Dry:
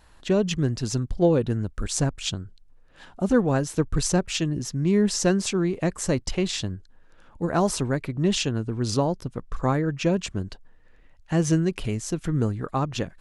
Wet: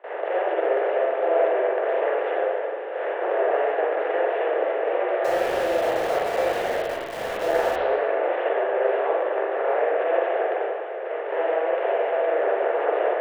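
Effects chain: per-bin compression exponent 0.2; gate with hold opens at -9 dBFS; bell 960 Hz -9.5 dB 1.4 oct; mistuned SSB +160 Hz 300–2100 Hz; on a send: diffused feedback echo 0.59 s, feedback 42%, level -9 dB; 5.24–7.76 on the sum: sample gate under -24.5 dBFS; spring tank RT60 1.1 s, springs 42/57 ms, chirp 75 ms, DRR -5 dB; gain -8 dB

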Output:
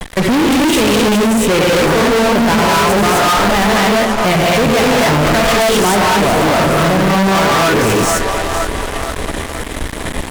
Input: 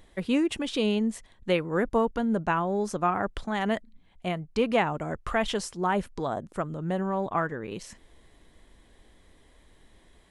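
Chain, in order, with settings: bell 4400 Hz -7 dB 0.64 oct; non-linear reverb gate 0.29 s rising, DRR -4.5 dB; in parallel at +3 dB: compressor, threshold -40 dBFS, peak gain reduction 24 dB; on the sum: gate with hold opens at -40 dBFS; on a send: split-band echo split 400 Hz, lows 0.106 s, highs 0.477 s, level -15 dB; on the sum: fuzz box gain 40 dB, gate -44 dBFS; gain +2.5 dB

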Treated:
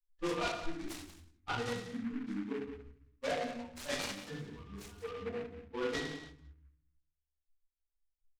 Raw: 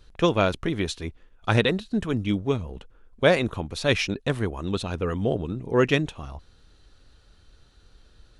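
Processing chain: per-bin expansion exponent 3; resonator 240 Hz, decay 0.24 s, harmonics all, mix 90%; compressor, threshold -44 dBFS, peak gain reduction 14 dB; LPF 1700 Hz 6 dB/oct; low shelf 360 Hz -11.5 dB; notches 50/100/150 Hz; on a send: echo 0.18 s -12 dB; on the sum: shoebox room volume 110 m³, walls mixed, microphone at 2.4 m; noise-modulated delay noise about 1500 Hz, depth 0.075 ms; gain +7 dB

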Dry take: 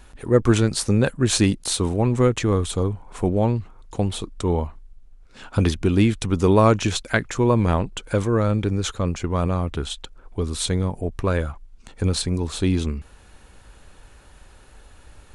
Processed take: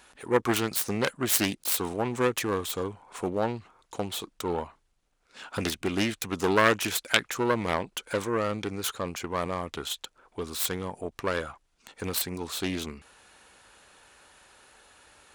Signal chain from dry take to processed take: self-modulated delay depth 0.3 ms; HPF 760 Hz 6 dB/oct

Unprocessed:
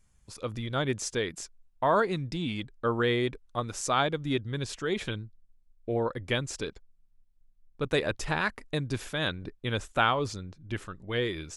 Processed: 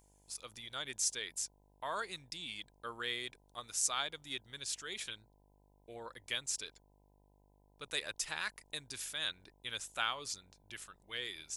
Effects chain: buzz 50 Hz, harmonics 20, -43 dBFS -7 dB/oct; pre-emphasis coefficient 0.97; gain +3 dB

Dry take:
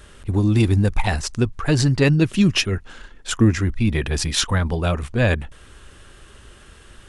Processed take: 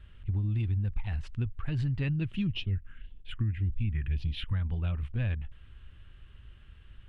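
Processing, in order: EQ curve 100 Hz 0 dB, 430 Hz -18 dB, 1100 Hz -15 dB, 3000 Hz -8 dB, 5700 Hz -30 dB; compressor 6:1, threshold -23 dBFS, peak gain reduction 10.5 dB; 2.47–4.53 phaser stages 4, 1.8 Hz, lowest notch 660–1700 Hz; gain -3.5 dB

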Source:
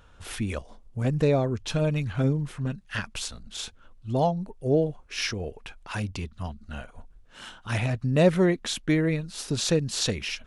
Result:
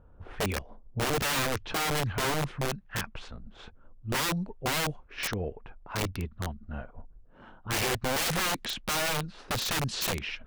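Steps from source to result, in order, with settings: low-pass opened by the level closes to 650 Hz, open at -20 dBFS; wrapped overs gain 23.5 dB

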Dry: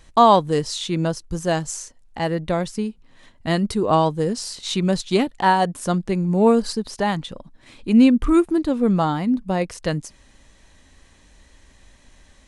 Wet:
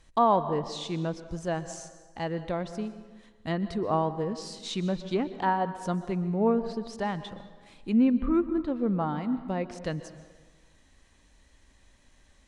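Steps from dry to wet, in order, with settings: treble ducked by the level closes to 1800 Hz, closed at -15 dBFS; plate-style reverb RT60 1.4 s, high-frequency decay 0.65×, pre-delay 0.11 s, DRR 12.5 dB; gain -9 dB

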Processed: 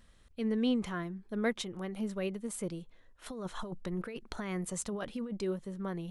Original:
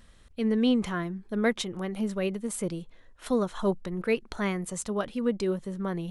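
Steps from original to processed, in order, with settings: 3.28–5.4 negative-ratio compressor -31 dBFS, ratio -1; gain -6 dB

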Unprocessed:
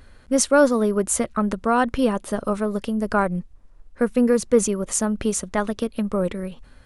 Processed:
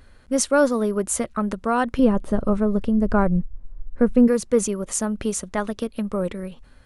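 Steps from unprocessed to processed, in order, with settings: 1.99–4.28 tilt -3 dB/oct; gain -2 dB

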